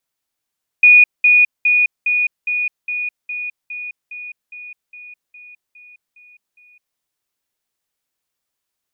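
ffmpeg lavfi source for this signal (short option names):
-f lavfi -i "aevalsrc='pow(10,(-4.5-3*floor(t/0.41))/20)*sin(2*PI*2460*t)*clip(min(mod(t,0.41),0.21-mod(t,0.41))/0.005,0,1)':d=6.15:s=44100"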